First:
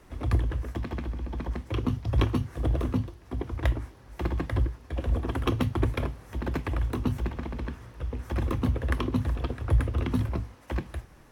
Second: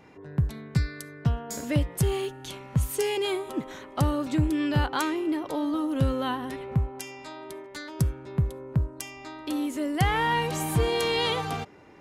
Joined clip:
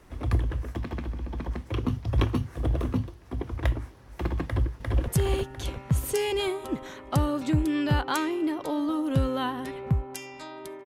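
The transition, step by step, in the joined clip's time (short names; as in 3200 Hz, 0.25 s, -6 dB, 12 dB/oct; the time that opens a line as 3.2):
first
4.45–5.08 echo throw 0.35 s, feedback 55%, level -1 dB
5.08 switch to second from 1.93 s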